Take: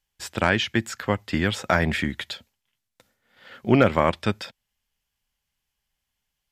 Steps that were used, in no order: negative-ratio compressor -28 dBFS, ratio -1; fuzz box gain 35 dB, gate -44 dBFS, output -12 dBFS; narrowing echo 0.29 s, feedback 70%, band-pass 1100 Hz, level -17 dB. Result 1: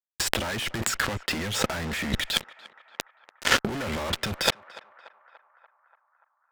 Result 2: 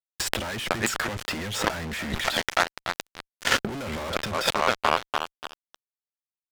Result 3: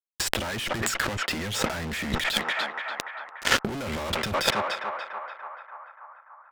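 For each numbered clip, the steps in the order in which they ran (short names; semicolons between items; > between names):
fuzz box > negative-ratio compressor > narrowing echo; narrowing echo > fuzz box > negative-ratio compressor; fuzz box > narrowing echo > negative-ratio compressor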